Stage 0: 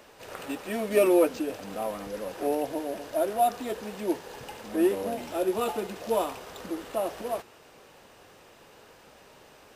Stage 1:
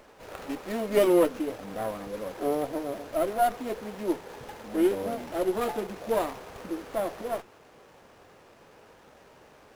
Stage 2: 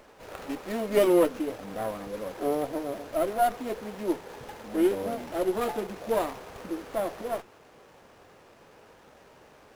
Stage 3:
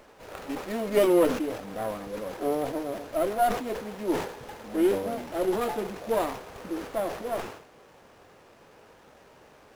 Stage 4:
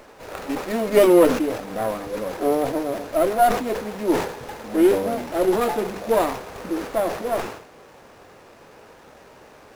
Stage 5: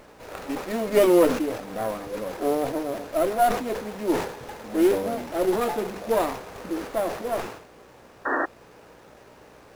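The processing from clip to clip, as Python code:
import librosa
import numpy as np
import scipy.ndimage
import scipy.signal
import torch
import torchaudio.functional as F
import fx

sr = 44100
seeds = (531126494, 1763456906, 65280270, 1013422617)

y1 = fx.running_max(x, sr, window=9)
y2 = y1
y3 = fx.sustainer(y2, sr, db_per_s=86.0)
y4 = fx.peak_eq(y3, sr, hz=3100.0, db=-2.5, octaves=0.23)
y4 = fx.hum_notches(y4, sr, base_hz=50, count=4)
y4 = F.gain(torch.from_numpy(y4), 7.0).numpy()
y5 = fx.dmg_buzz(y4, sr, base_hz=60.0, harmonics=10, level_db=-54.0, tilt_db=0, odd_only=False)
y5 = fx.quant_companded(y5, sr, bits=6)
y5 = fx.spec_paint(y5, sr, seeds[0], shape='noise', start_s=8.25, length_s=0.21, low_hz=250.0, high_hz=1900.0, level_db=-21.0)
y5 = F.gain(torch.from_numpy(y5), -3.5).numpy()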